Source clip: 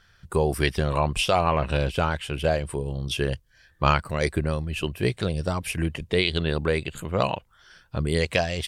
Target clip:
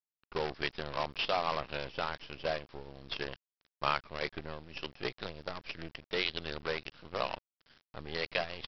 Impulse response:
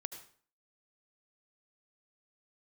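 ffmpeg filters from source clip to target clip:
-af "highpass=f=480:p=1,aresample=11025,acrusher=bits=5:dc=4:mix=0:aa=0.000001,aresample=44100,volume=0.376"

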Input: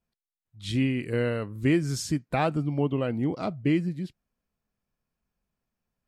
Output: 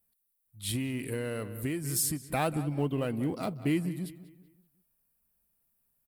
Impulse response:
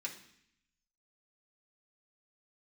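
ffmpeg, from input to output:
-filter_complex "[0:a]asplit=2[s0][s1];[s1]volume=47.3,asoftclip=hard,volume=0.0211,volume=0.335[s2];[s0][s2]amix=inputs=2:normalize=0,equalizer=f=9800:w=0.31:g=4.5,asplit=2[s3][s4];[s4]adelay=190,lowpass=f=3900:p=1,volume=0.178,asplit=2[s5][s6];[s6]adelay=190,lowpass=f=3900:p=1,volume=0.41,asplit=2[s7][s8];[s8]adelay=190,lowpass=f=3900:p=1,volume=0.41,asplit=2[s9][s10];[s10]adelay=190,lowpass=f=3900:p=1,volume=0.41[s11];[s3][s5][s7][s9][s11]amix=inputs=5:normalize=0,asettb=1/sr,asplit=3[s12][s13][s14];[s12]atrim=end=0.754[s15];[s13]atrim=start=0.75:end=2.24,asetpts=PTS-STARTPTS,afade=t=in:d=0.004:c=qsin,afade=t=out:st=1.486:d=0.004:c=qsin,acompressor=threshold=0.0562:ratio=6[s16];[s14]atrim=start=2.236[s17];[s15][s16]acrossfade=d=0.004:c1=hsin:c2=qsin[s18];[s18][s17]acrossfade=d=0.004:c1=qsin:c2=hsin,aexciter=amount=8.4:drive=4.5:freq=8800,volume=0.562"

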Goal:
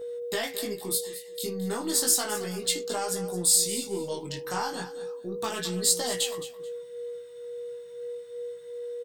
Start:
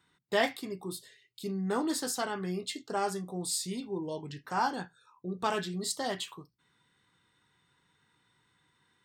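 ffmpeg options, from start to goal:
-af "acompressor=threshold=0.0251:ratio=12,aeval=exprs='0.0668*(cos(1*acos(clip(val(0)/0.0668,-1,1)))-cos(1*PI/2))+0.00133*(cos(6*acos(clip(val(0)/0.0668,-1,1)))-cos(6*PI/2))':c=same,crystalizer=i=4:c=0,aeval=exprs='val(0)+0.0126*sin(2*PI*480*n/s)':c=same,flanger=delay=16.5:depth=6:speed=0.33,aecho=1:1:217|434:0.2|0.0419,volume=1.88"

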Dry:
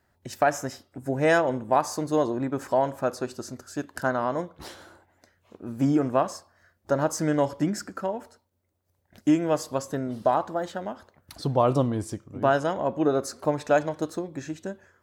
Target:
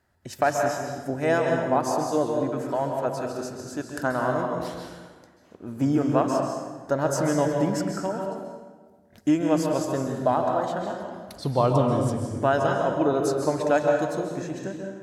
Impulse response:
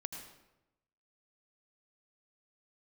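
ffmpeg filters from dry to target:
-filter_complex "[0:a]asettb=1/sr,asplit=3[s0][s1][s2];[s0]atrim=end=1.104[s3];[s1]atrim=start=1.1:end=3.36,asetpts=PTS-STARTPTS,afade=t=in:d=0.004:c=qsin,afade=t=out:st=2.256:d=0.004:c=qsin,acrossover=split=980[s4][s5];[s4]aeval=exprs='val(0)*(1-0.5/2+0.5/2*cos(2*PI*4.5*n/s))':c=same[s6];[s5]aeval=exprs='val(0)*(1-0.5/2-0.5/2*cos(2*PI*4.5*n/s))':c=same[s7];[s6][s7]amix=inputs=2:normalize=0[s8];[s2]atrim=start=3.356[s9];[s3][s8]acrossfade=d=0.004:c1=hsin:c2=qsin[s10];[s10][s9]acrossfade=d=0.004:c1=qsin:c2=hsin[s11];[1:a]atrim=start_sample=2205,asetrate=26019,aresample=44100[s12];[s11][s12]afir=irnorm=-1:irlink=0"

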